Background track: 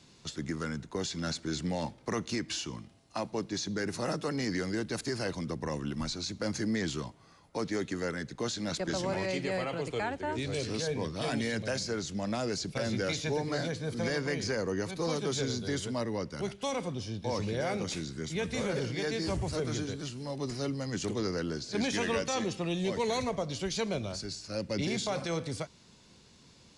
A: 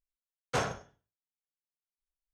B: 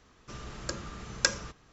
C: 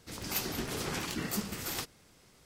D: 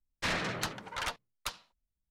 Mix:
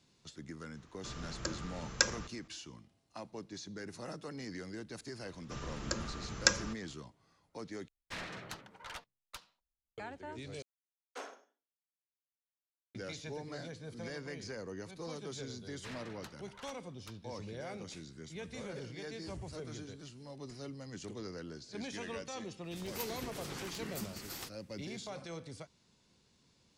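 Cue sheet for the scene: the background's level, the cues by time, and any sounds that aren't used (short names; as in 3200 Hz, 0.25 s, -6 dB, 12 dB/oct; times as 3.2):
background track -11.5 dB
0.76 add B -3 dB
5.22 add B -1 dB
7.88 replace with D -11 dB
10.62 replace with A -14.5 dB + steep high-pass 240 Hz 72 dB/oct
15.61 add D -16.5 dB
22.64 add C -8.5 dB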